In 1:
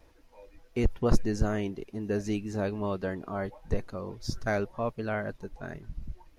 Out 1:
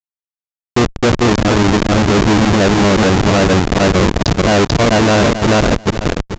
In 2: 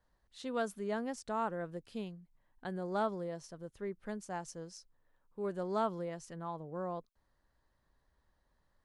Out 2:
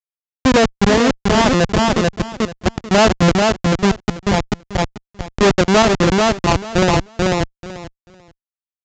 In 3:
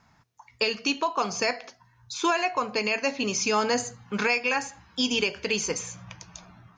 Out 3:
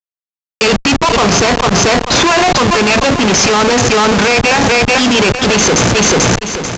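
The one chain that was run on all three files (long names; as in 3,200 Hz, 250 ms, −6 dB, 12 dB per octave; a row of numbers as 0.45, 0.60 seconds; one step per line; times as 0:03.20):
in parallel at −1.5 dB: downward compressor 20 to 1, threshold −33 dBFS
on the sum: comparator with hysteresis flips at −30.5 dBFS
on a send: repeating echo 439 ms, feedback 18%, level −4 dB
on the sum: hard clipping −36.5 dBFS
high-pass filter 64 Hz 6 dB per octave
downsampling to 16,000 Hz
normalise the peak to −3 dBFS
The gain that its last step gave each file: +27.0, +27.0, +27.0 decibels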